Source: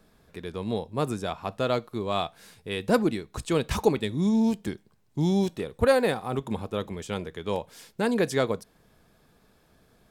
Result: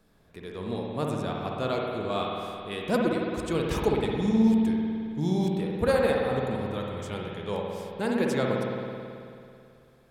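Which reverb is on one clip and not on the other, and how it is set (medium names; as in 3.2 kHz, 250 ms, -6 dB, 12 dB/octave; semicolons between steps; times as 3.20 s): spring tank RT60 2.5 s, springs 54 ms, chirp 50 ms, DRR -1.5 dB; trim -4.5 dB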